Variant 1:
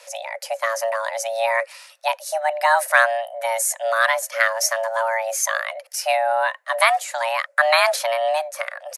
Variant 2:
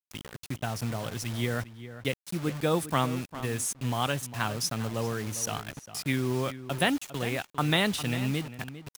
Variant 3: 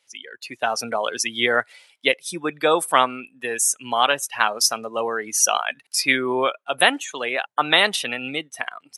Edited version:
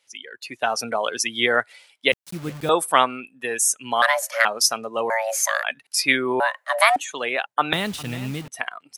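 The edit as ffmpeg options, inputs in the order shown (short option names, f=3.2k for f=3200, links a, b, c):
-filter_complex "[1:a]asplit=2[a][b];[0:a]asplit=3[c][d][e];[2:a]asplit=6[f][g][h][i][j][k];[f]atrim=end=2.122[l];[a]atrim=start=2.118:end=2.692[m];[g]atrim=start=2.688:end=4.022[n];[c]atrim=start=4.018:end=4.452[o];[h]atrim=start=4.448:end=5.102[p];[d]atrim=start=5.098:end=5.632[q];[i]atrim=start=5.628:end=6.402[r];[e]atrim=start=6.398:end=6.962[s];[j]atrim=start=6.958:end=7.732[t];[b]atrim=start=7.728:end=8.482[u];[k]atrim=start=8.478[v];[l][m]acrossfade=d=0.004:c1=hsin:c2=hsin[w];[w][n]acrossfade=d=0.004:c1=hsin:c2=hsin[x];[x][o]acrossfade=d=0.004:c1=hsin:c2=hsin[y];[y][p]acrossfade=d=0.004:c1=hsin:c2=hsin[z];[z][q]acrossfade=d=0.004:c1=hsin:c2=hsin[aa];[aa][r]acrossfade=d=0.004:c1=hsin:c2=hsin[ab];[ab][s]acrossfade=d=0.004:c1=hsin:c2=hsin[ac];[ac][t]acrossfade=d=0.004:c1=hsin:c2=hsin[ad];[ad][u]acrossfade=d=0.004:c1=hsin:c2=hsin[ae];[ae][v]acrossfade=d=0.004:c1=hsin:c2=hsin"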